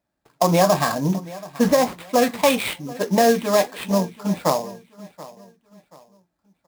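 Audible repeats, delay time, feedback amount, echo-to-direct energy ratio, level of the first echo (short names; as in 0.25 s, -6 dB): 2, 0.731 s, 34%, -18.5 dB, -19.0 dB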